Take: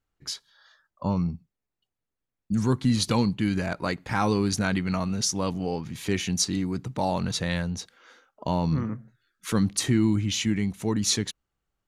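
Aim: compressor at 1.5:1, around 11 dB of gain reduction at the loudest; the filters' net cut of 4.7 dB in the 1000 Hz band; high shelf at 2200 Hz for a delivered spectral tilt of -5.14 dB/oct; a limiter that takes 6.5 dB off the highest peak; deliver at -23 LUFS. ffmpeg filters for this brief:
-af "equalizer=f=1k:t=o:g=-5,highshelf=f=2.2k:g=-5.5,acompressor=threshold=-50dB:ratio=1.5,volume=17dB,alimiter=limit=-12.5dB:level=0:latency=1"

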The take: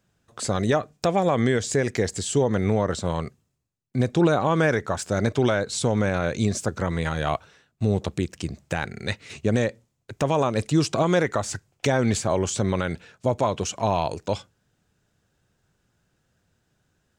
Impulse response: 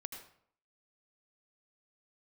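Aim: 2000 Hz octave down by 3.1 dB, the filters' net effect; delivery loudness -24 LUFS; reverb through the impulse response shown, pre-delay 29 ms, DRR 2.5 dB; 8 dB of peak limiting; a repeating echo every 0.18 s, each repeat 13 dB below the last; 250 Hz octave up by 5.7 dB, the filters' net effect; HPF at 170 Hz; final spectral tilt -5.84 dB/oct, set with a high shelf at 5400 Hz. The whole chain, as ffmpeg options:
-filter_complex "[0:a]highpass=170,equalizer=f=250:t=o:g=9,equalizer=f=2k:t=o:g=-3.5,highshelf=f=5.4k:g=-6.5,alimiter=limit=-14.5dB:level=0:latency=1,aecho=1:1:180|360|540:0.224|0.0493|0.0108,asplit=2[a][b];[1:a]atrim=start_sample=2205,adelay=29[c];[b][c]afir=irnorm=-1:irlink=0,volume=0dB[d];[a][d]amix=inputs=2:normalize=0,volume=0.5dB"

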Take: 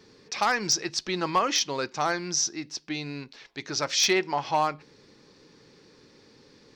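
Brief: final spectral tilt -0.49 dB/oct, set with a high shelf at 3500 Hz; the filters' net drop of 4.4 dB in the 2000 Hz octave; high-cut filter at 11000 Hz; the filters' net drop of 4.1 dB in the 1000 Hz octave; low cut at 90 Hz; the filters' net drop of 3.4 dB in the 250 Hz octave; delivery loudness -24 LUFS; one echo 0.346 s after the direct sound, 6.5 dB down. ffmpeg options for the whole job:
-af "highpass=90,lowpass=11k,equalizer=f=250:t=o:g=-5,equalizer=f=1k:t=o:g=-4,equalizer=f=2k:t=o:g=-7,highshelf=f=3.5k:g=8,aecho=1:1:346:0.473,volume=-0.5dB"

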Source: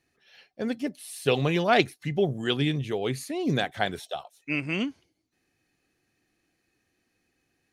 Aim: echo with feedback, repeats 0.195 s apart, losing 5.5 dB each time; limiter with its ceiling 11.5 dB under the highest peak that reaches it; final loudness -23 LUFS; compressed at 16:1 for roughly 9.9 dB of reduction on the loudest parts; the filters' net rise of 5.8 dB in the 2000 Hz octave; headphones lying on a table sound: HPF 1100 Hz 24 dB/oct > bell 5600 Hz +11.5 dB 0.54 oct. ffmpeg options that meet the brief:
-af "equalizer=f=2k:t=o:g=7,acompressor=threshold=-23dB:ratio=16,alimiter=limit=-21dB:level=0:latency=1,highpass=f=1.1k:w=0.5412,highpass=f=1.1k:w=1.3066,equalizer=f=5.6k:t=o:w=0.54:g=11.5,aecho=1:1:195|390|585|780|975|1170|1365:0.531|0.281|0.149|0.079|0.0419|0.0222|0.0118,volume=12dB"

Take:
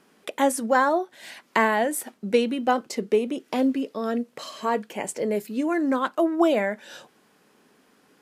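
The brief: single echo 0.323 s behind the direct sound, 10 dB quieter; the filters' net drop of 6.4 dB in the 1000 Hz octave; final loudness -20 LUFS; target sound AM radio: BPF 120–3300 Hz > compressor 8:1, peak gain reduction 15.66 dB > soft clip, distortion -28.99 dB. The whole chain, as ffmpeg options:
-af "highpass=120,lowpass=3.3k,equalizer=f=1k:t=o:g=-8.5,aecho=1:1:323:0.316,acompressor=threshold=-32dB:ratio=8,asoftclip=threshold=-19.5dB,volume=17dB"

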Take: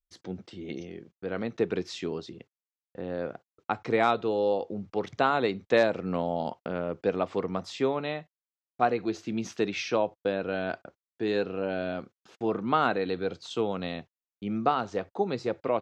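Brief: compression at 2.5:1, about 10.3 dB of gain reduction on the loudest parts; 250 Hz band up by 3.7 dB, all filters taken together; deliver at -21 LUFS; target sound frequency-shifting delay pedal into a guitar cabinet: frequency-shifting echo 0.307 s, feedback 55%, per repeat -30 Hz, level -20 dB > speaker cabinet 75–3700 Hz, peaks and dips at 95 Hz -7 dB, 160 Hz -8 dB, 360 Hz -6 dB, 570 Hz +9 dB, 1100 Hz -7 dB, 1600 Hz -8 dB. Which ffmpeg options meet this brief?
-filter_complex "[0:a]equalizer=f=250:t=o:g=7.5,acompressor=threshold=-31dB:ratio=2.5,asplit=5[a][b][c][d][e];[b]adelay=307,afreqshift=-30,volume=-20dB[f];[c]adelay=614,afreqshift=-60,volume=-25.2dB[g];[d]adelay=921,afreqshift=-90,volume=-30.4dB[h];[e]adelay=1228,afreqshift=-120,volume=-35.6dB[i];[a][f][g][h][i]amix=inputs=5:normalize=0,highpass=75,equalizer=f=95:t=q:w=4:g=-7,equalizer=f=160:t=q:w=4:g=-8,equalizer=f=360:t=q:w=4:g=-6,equalizer=f=570:t=q:w=4:g=9,equalizer=f=1.1k:t=q:w=4:g=-7,equalizer=f=1.6k:t=q:w=4:g=-8,lowpass=f=3.7k:w=0.5412,lowpass=f=3.7k:w=1.3066,volume=13dB"

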